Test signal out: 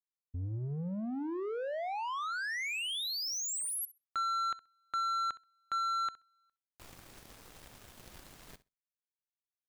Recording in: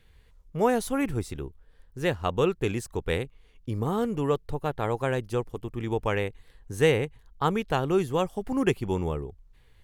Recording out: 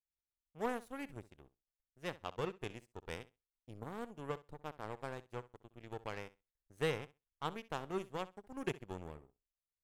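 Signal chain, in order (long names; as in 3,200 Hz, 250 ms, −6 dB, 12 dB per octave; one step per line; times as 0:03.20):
power curve on the samples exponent 2
soft clipping −18 dBFS
flutter between parallel walls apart 11.1 metres, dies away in 0.22 s
level −5 dB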